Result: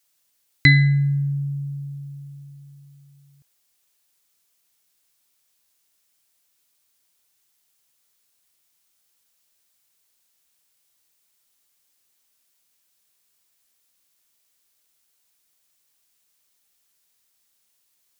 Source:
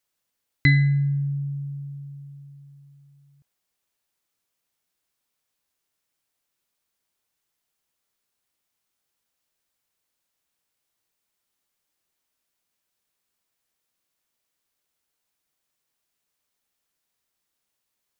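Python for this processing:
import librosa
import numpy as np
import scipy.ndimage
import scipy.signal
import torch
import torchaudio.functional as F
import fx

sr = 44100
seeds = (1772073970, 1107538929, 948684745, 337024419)

y = fx.high_shelf(x, sr, hz=2700.0, db=10.0)
y = F.gain(torch.from_numpy(y), 2.5).numpy()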